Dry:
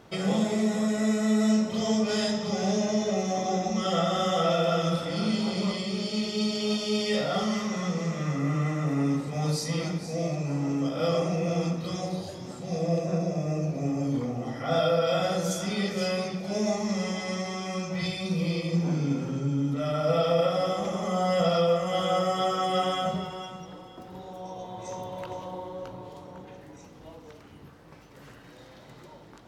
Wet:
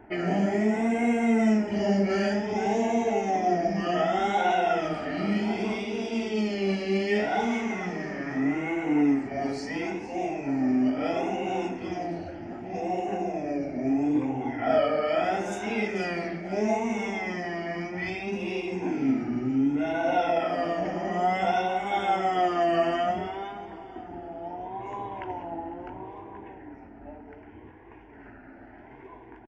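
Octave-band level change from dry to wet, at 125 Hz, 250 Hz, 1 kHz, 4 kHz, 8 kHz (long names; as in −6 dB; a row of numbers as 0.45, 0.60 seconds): −7.5, +1.0, +4.0, −7.5, −9.5 decibels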